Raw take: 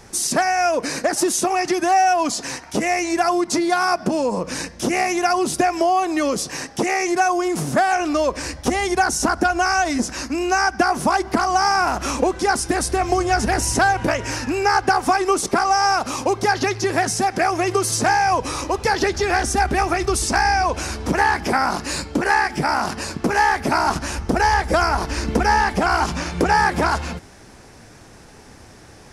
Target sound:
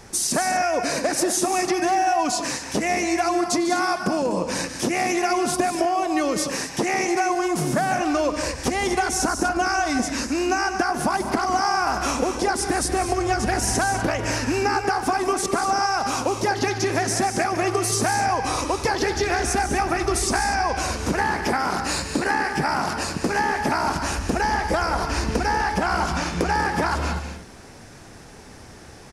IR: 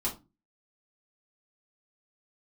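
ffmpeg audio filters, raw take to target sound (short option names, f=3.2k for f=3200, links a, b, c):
-af "acompressor=threshold=-19dB:ratio=6,aecho=1:1:96|148|192|217|247:0.106|0.251|0.282|0.15|0.251"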